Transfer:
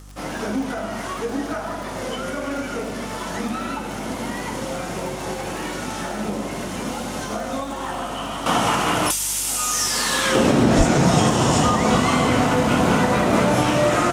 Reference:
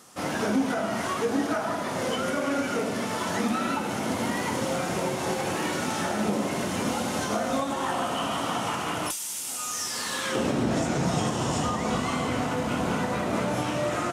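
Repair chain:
click removal
hum removal 49.3 Hz, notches 6
0:10.77–0:10.89: high-pass filter 140 Hz 24 dB per octave
level 0 dB, from 0:08.46 −9.5 dB

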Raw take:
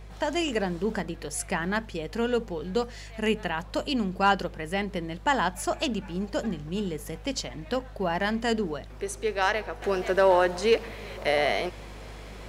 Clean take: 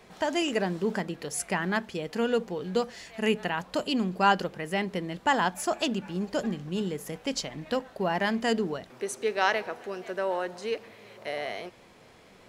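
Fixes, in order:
clipped peaks rebuilt −11.5 dBFS
hum removal 51 Hz, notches 3
level correction −9.5 dB, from 0:09.82

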